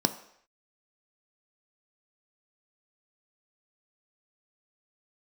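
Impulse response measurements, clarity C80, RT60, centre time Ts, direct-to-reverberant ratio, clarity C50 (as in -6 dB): 16.0 dB, not exponential, 9 ms, 8.0 dB, 13.5 dB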